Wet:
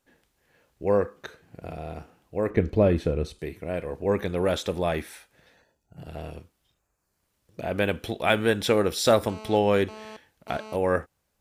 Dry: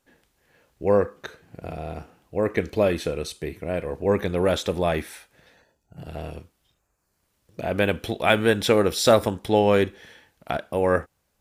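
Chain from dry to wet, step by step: 2.50–3.39 s: tilt EQ -3 dB/octave; 9.29–10.76 s: mobile phone buzz -39 dBFS; trim -3 dB

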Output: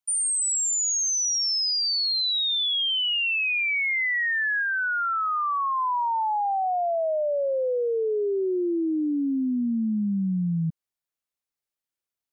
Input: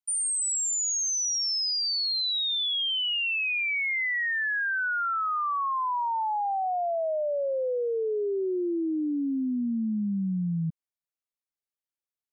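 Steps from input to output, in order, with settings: 4.62–5.78 s: treble shelf 4.4 kHz -9 dB; trim +3 dB

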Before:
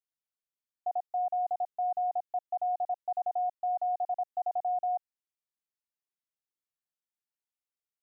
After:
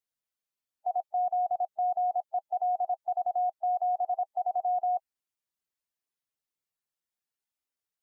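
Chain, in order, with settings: coarse spectral quantiser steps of 15 dB; trim +2.5 dB

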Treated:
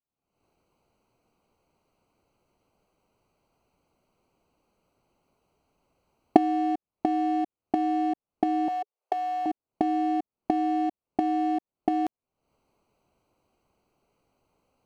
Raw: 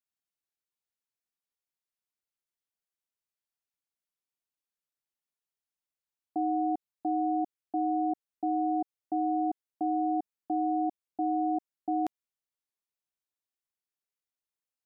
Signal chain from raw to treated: local Wiener filter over 25 samples; recorder AGC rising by 69 dB/s; 8.68–9.46 s: Chebyshev high-pass 420 Hz, order 5; trim +3.5 dB

